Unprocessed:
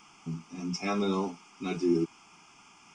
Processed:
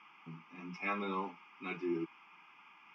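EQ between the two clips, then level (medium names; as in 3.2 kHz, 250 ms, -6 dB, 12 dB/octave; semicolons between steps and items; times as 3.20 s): cabinet simulation 140–2100 Hz, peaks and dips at 260 Hz -4 dB, 420 Hz -6 dB, 690 Hz -10 dB, 1.4 kHz -6 dB; differentiator; tilt EQ -1.5 dB/octave; +17.5 dB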